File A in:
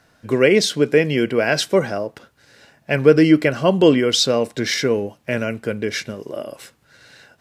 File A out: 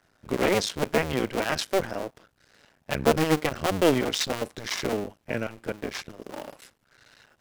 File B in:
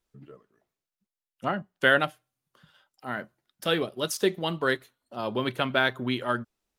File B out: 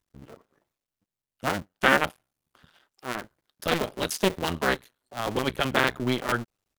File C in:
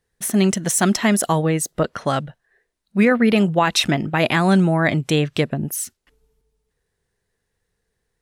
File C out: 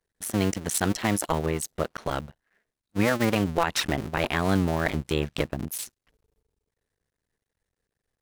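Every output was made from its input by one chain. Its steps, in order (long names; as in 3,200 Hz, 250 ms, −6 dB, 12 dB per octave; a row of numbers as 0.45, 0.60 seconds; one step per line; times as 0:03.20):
sub-harmonics by changed cycles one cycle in 2, muted
loudness normalisation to −27 LKFS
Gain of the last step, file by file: −6.5, +3.5, −5.0 decibels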